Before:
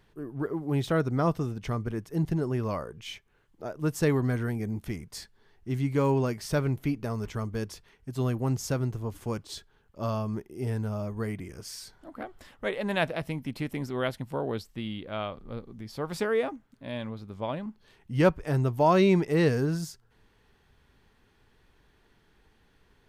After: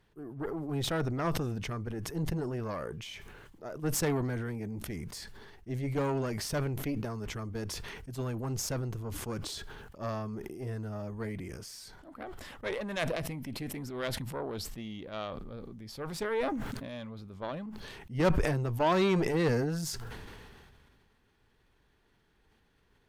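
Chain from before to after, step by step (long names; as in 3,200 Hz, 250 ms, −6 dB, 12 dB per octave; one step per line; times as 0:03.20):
harmonic generator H 6 −17 dB, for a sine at −10 dBFS
level that may fall only so fast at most 26 dB per second
level −6 dB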